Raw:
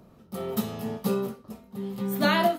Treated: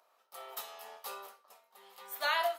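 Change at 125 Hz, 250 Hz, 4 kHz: below −40 dB, −40.0 dB, −5.5 dB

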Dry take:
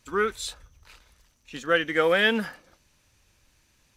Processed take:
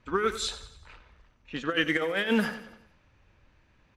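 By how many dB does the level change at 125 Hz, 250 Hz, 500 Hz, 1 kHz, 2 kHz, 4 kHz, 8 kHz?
+0.5, +1.5, −5.5, −3.5, −4.5, −2.5, −0.5 decibels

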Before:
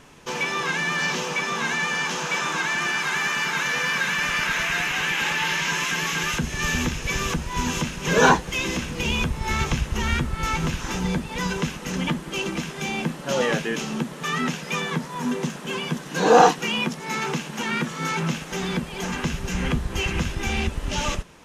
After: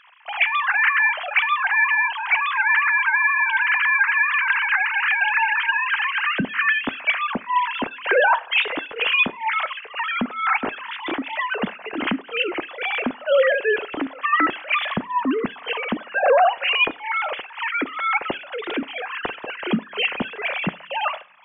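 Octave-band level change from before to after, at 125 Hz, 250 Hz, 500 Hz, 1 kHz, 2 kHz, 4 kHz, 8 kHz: −13.0 dB, −2.0 dB, +2.0 dB, +3.0 dB, +6.0 dB, 0.0 dB, below −40 dB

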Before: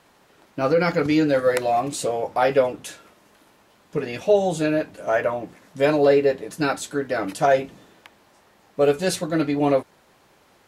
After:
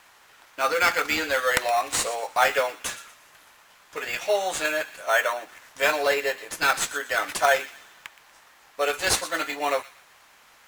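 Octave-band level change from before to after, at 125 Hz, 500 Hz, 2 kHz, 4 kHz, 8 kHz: −17.5, −7.0, +6.0, +5.5, +6.0 decibels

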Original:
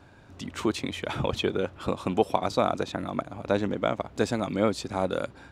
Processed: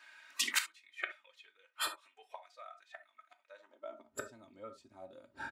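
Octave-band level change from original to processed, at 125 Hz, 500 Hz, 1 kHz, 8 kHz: −34.0, −24.5, −17.5, +1.5 decibels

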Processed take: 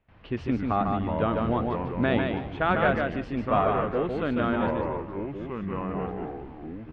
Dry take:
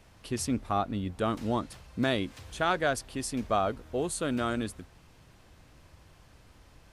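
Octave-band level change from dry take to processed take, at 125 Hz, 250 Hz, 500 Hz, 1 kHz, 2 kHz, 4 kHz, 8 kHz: +6.5 dB, +5.5 dB, +5.5 dB, +5.0 dB, +4.5 dB, −3.5 dB, below −25 dB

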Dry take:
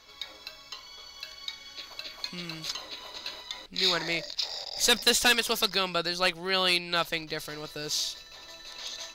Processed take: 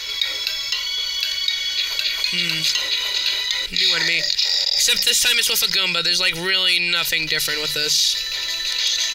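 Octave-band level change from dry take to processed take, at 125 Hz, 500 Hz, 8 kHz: +5.5, +0.5, +11.5 decibels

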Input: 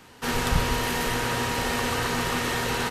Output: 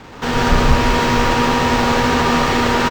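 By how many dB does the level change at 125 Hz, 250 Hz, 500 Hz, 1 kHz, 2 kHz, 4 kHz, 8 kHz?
+10.0, +13.0, +11.0, +12.0, +8.5, +7.5, +3.0 decibels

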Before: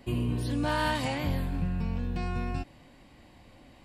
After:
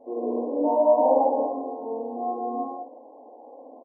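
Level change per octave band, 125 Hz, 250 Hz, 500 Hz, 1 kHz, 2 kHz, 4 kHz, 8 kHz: below −30 dB, +2.0 dB, +16.0 dB, +9.5 dB, below −40 dB, below −40 dB, below −30 dB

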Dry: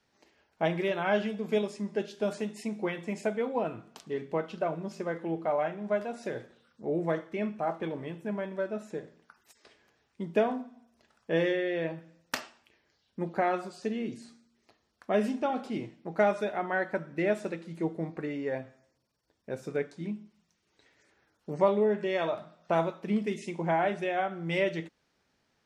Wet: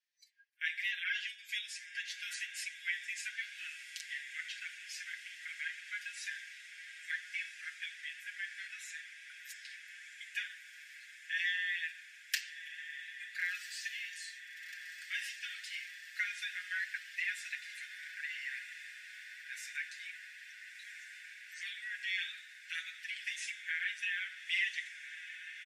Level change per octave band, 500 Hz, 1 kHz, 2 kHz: below −40 dB, below −25 dB, +2.5 dB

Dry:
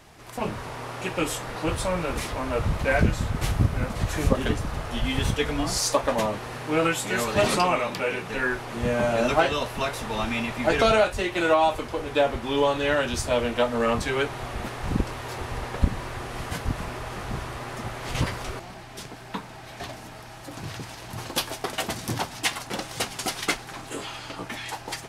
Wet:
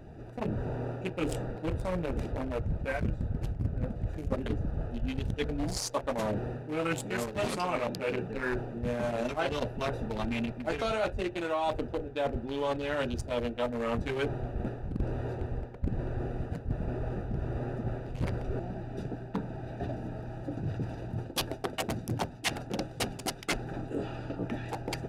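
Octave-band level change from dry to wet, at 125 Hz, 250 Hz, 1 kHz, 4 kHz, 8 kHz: −4.0, −4.5, −9.5, −10.0, −10.5 decibels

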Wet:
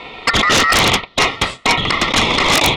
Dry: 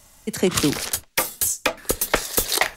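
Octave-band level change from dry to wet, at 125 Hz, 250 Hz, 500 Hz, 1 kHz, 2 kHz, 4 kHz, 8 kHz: +8.5, +4.0, +5.0, +13.5, +12.5, +13.0, +1.5 decibels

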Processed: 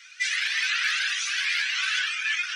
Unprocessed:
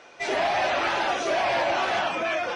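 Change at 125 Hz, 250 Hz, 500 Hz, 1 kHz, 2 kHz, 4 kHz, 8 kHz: below −40 dB, below −40 dB, below −40 dB, −16.0 dB, +3.5 dB, +6.0 dB, +8.5 dB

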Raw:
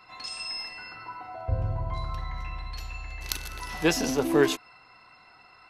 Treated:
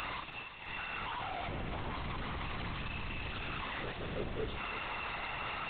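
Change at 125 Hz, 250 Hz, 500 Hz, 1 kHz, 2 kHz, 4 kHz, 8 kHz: −9.0 dB, −14.5 dB, −14.0 dB, −2.5 dB, −3.5 dB, −8.0 dB, below −35 dB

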